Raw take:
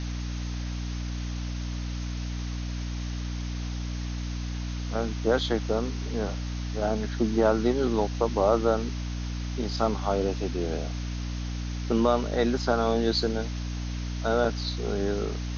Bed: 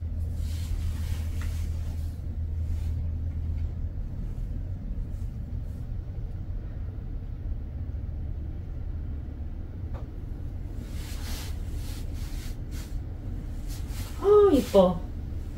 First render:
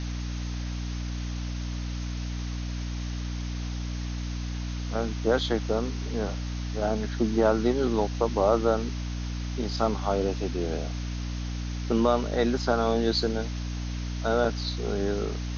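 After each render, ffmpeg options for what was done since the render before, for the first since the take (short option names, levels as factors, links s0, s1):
-af anull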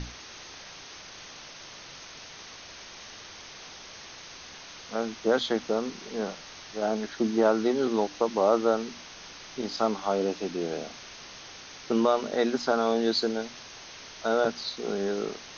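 -af "bandreject=f=60:t=h:w=6,bandreject=f=120:t=h:w=6,bandreject=f=180:t=h:w=6,bandreject=f=240:t=h:w=6,bandreject=f=300:t=h:w=6"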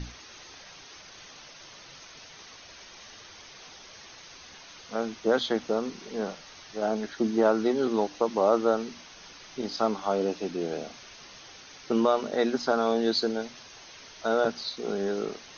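-af "afftdn=nr=6:nf=-46"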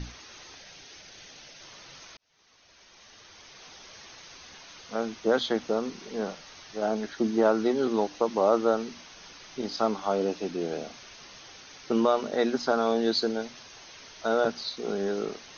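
-filter_complex "[0:a]asettb=1/sr,asplit=3[s0][s1][s2];[s0]atrim=end=0.564[s3];[s1]atrim=start=0.56:end=1.62,asetpts=PTS-STARTPTS,afade=t=in:d=0.004:c=qsin,afade=t=out:st=1.056:d=0.004:c=qsin,equalizer=f=1100:t=o:w=0.57:g=-8[s4];[s2]atrim=start=1.616[s5];[s3][s4]acrossfade=d=0.004:c1=hsin:c2=qsin[s6];[s6][s5]acrossfade=d=0.004:c1=qsin:c2=hsin,asplit=2[s7][s8];[s7]atrim=end=2.17,asetpts=PTS-STARTPTS,afade=t=out:st=2.166:d=0.004:c=hsin[s9];[s8]atrim=start=2.17,asetpts=PTS-STARTPTS,afade=t=in:d=1.68[s10];[s9][s10]concat=n=2:v=0:a=1"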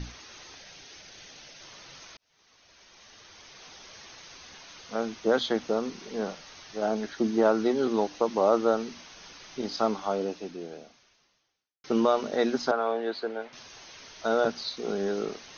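-filter_complex "[0:a]asettb=1/sr,asplit=3[s0][s1][s2];[s0]atrim=end=12.714[s3];[s1]atrim=start=12.71:end=13.53,asetpts=PTS-STARTPTS,afade=t=in:d=0.004:c=qsin,afade=t=out:st=0.816:d=0.004:c=qsin,acrossover=split=400 2900:gain=0.178 1 0.0708[s4][s5][s6];[s4][s5][s6]amix=inputs=3:normalize=0[s7];[s2]atrim=start=13.526[s8];[s3][s7]acrossfade=d=0.004:c1=hsin:c2=qsin[s9];[s9][s8]acrossfade=d=0.004:c1=qsin:c2=hsin,asplit=2[s10][s11];[s10]atrim=end=11.84,asetpts=PTS-STARTPTS,afade=t=out:st=9.92:d=1.92:c=qua[s12];[s11]atrim=start=11.84,asetpts=PTS-STARTPTS,afade=t=in:d=0.004:c=hsin[s13];[s12][s13]concat=n=2:v=0:a=1"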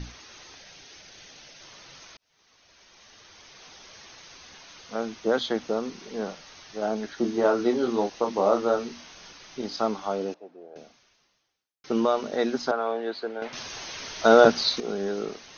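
-filter_complex "[0:a]asettb=1/sr,asplit=3[s0][s1][s2];[s0]atrim=end=7.154[s3];[s1]atrim=start=7.15:end=9.32,asetpts=PTS-STARTPTS,afade=t=in:d=0.004:c=qsin,afade=t=out:st=2.166:d=0.004:c=qsin,asplit=2[s4][s5];[s5]adelay=25,volume=0.562[s6];[s4][s6]amix=inputs=2:normalize=0,atrim=end_sample=95697[s7];[s2]atrim=start=9.316[s8];[s3][s7]acrossfade=d=0.004:c1=hsin:c2=qsin[s9];[s9][s8]acrossfade=d=0.004:c1=qsin:c2=hsin,asettb=1/sr,asplit=3[s10][s11][s12];[s10]atrim=end=10.344[s13];[s11]atrim=start=10.34:end=10.76,asetpts=PTS-STARTPTS,afade=t=in:d=0.004:c=qsin,afade=t=out:st=0.416:d=0.004:c=qsin,bandpass=f=650:t=q:w=2.1[s14];[s12]atrim=start=10.756[s15];[s13][s14]acrossfade=d=0.004:c1=hsin:c2=qsin[s16];[s16][s15]acrossfade=d=0.004:c1=qsin:c2=hsin,asplit=3[s17][s18][s19];[s17]atrim=end=13.422[s20];[s18]atrim=start=13.418:end=14.802,asetpts=PTS-STARTPTS,volume=3.16[s21];[s19]atrim=start=14.798[s22];[s20][s21]acrossfade=d=0.004:c1=hsin:c2=hsin[s23];[s23][s22]acrossfade=d=0.004:c1=hsin:c2=hsin"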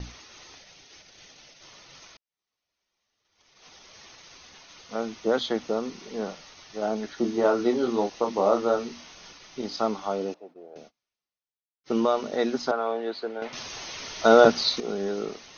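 -af "agate=range=0.0501:threshold=0.00398:ratio=16:detection=peak,bandreject=f=1600:w=14"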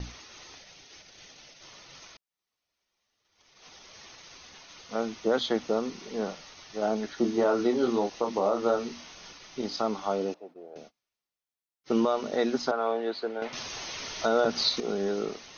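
-af "alimiter=limit=0.188:level=0:latency=1:release=142"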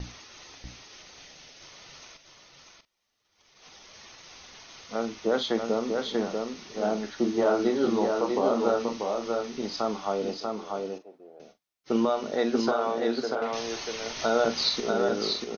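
-filter_complex "[0:a]asplit=2[s0][s1];[s1]adelay=43,volume=0.251[s2];[s0][s2]amix=inputs=2:normalize=0,aecho=1:1:640:0.631"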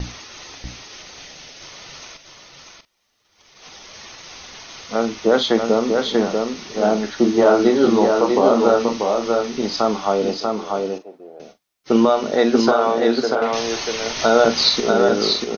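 -af "volume=3.16,alimiter=limit=0.794:level=0:latency=1"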